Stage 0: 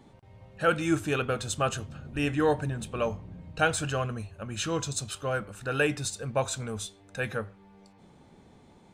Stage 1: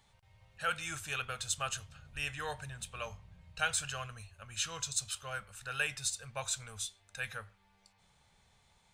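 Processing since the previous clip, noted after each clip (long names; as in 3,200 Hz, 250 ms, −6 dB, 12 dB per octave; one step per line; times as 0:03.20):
guitar amp tone stack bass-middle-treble 10-0-10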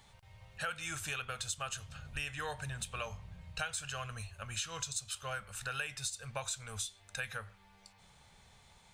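downward compressor 5 to 1, threshold −43 dBFS, peak gain reduction 15 dB
level +6.5 dB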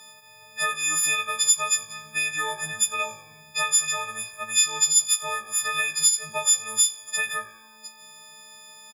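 every partial snapped to a pitch grid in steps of 6 semitones
high-pass filter 180 Hz 24 dB per octave
echo with shifted repeats 90 ms, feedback 50%, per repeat −53 Hz, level −21.5 dB
level +6.5 dB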